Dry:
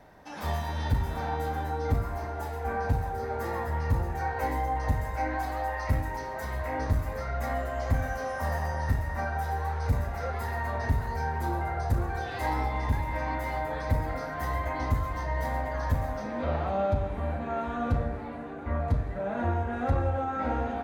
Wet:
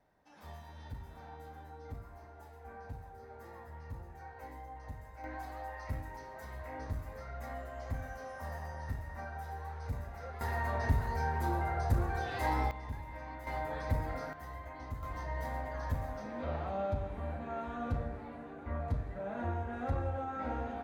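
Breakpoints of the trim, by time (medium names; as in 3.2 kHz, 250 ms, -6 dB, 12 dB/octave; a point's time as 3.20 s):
-18.5 dB
from 5.24 s -12 dB
from 10.41 s -3 dB
from 12.71 s -14 dB
from 13.47 s -6 dB
from 14.33 s -15 dB
from 15.03 s -8 dB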